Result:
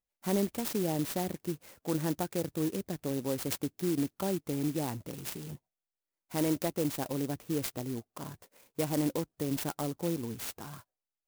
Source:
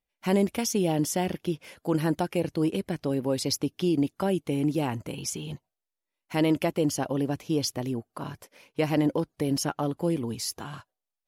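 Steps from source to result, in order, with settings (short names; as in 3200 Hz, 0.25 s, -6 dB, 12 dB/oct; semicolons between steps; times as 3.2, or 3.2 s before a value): clock jitter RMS 0.095 ms; gain -6 dB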